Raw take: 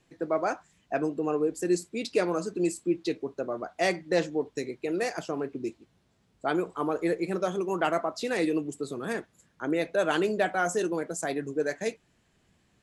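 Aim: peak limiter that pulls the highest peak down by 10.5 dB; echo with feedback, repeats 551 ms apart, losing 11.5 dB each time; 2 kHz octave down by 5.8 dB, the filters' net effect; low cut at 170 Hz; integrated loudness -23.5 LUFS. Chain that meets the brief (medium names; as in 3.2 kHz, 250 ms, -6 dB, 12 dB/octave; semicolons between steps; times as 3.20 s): high-pass 170 Hz; peaking EQ 2 kHz -8 dB; peak limiter -24 dBFS; feedback delay 551 ms, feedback 27%, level -11.5 dB; trim +10.5 dB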